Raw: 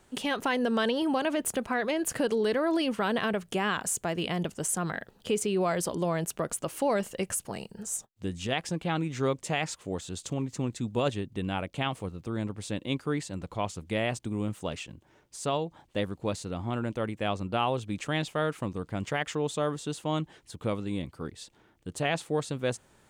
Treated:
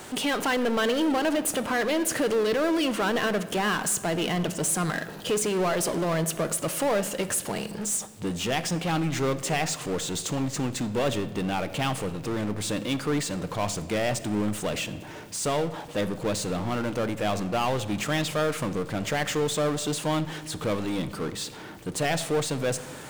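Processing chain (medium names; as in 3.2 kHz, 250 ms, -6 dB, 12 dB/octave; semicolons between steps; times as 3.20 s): high-pass 190 Hz 6 dB/octave; power-law waveshaper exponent 0.5; reverberation RT60 1.6 s, pre-delay 7 ms, DRR 11.5 dB; trim -2.5 dB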